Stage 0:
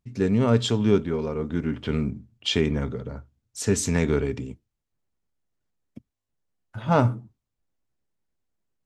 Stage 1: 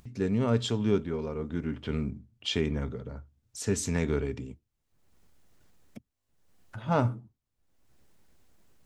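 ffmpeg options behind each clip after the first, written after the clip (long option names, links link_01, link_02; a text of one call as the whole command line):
ffmpeg -i in.wav -af "acompressor=mode=upward:threshold=-34dB:ratio=2.5,equalizer=frequency=73:width=4.4:gain=3,volume=-6dB" out.wav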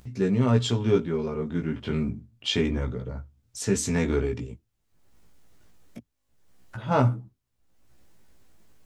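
ffmpeg -i in.wav -af "flanger=delay=15.5:depth=2.8:speed=0.29,volume=7dB" out.wav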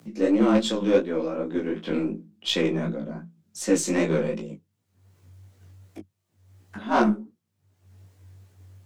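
ffmpeg -i in.wav -af "afreqshift=94,aeval=exprs='0.355*(cos(1*acos(clip(val(0)/0.355,-1,1)))-cos(1*PI/2))+0.0447*(cos(5*acos(clip(val(0)/0.355,-1,1)))-cos(5*PI/2))+0.0141*(cos(6*acos(clip(val(0)/0.355,-1,1)))-cos(6*PI/2))+0.0316*(cos(7*acos(clip(val(0)/0.355,-1,1)))-cos(7*PI/2))+0.0158*(cos(8*acos(clip(val(0)/0.355,-1,1)))-cos(8*PI/2))':channel_layout=same,flanger=delay=16.5:depth=6:speed=2.7,volume=3.5dB" out.wav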